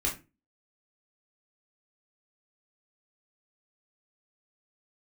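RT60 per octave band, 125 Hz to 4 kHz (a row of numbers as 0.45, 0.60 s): 0.40, 0.40, 0.30, 0.25, 0.25, 0.20 s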